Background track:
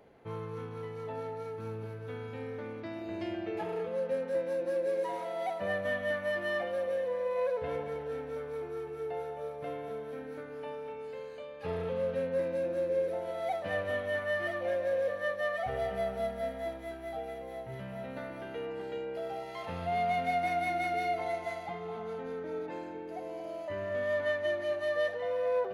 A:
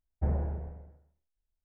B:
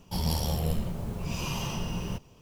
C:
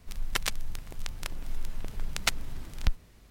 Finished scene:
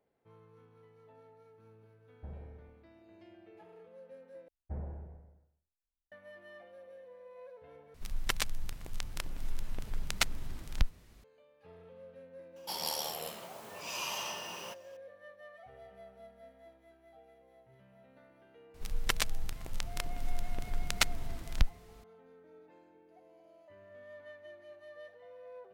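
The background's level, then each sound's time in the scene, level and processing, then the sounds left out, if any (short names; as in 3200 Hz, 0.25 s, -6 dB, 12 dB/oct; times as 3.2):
background track -20 dB
2.01 add A -17 dB
4.48 replace with A -11 dB
7.94 replace with C -2.5 dB
12.56 add B -0.5 dB + HPF 680 Hz
18.74 add C -1 dB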